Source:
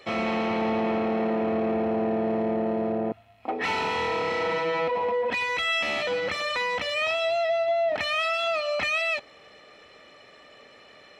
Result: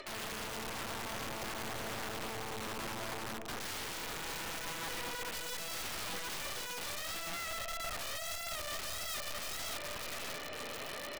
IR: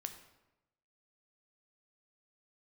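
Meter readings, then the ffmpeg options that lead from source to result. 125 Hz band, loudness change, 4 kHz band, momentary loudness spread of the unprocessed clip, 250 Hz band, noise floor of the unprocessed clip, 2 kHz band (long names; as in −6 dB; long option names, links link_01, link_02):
−8.5 dB, −13.5 dB, −7.5 dB, 3 LU, −19.0 dB, −52 dBFS, −12.5 dB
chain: -filter_complex "[0:a]acrossover=split=520|1800[link_01][link_02][link_03];[link_01]acrusher=bits=3:mode=log:mix=0:aa=0.000001[link_04];[link_04][link_02][link_03]amix=inputs=3:normalize=0,acompressor=mode=upward:threshold=-29dB:ratio=2.5,aeval=exprs='0.188*(cos(1*acos(clip(val(0)/0.188,-1,1)))-cos(1*PI/2))+0.075*(cos(2*acos(clip(val(0)/0.188,-1,1)))-cos(2*PI/2))+0.075*(cos(4*acos(clip(val(0)/0.188,-1,1)))-cos(4*PI/2))':channel_layout=same,aecho=1:1:586|1172|1758|2344:0.398|0.139|0.0488|0.0171,flanger=delay=3.1:depth=9.8:regen=-20:speed=0.81:shape=sinusoidal,highshelf=frequency=5500:gain=-10,areverse,acompressor=threshold=-36dB:ratio=10,areverse,aeval=exprs='(mod(56.2*val(0)+1,2)-1)/56.2':channel_layout=same,volume=1dB"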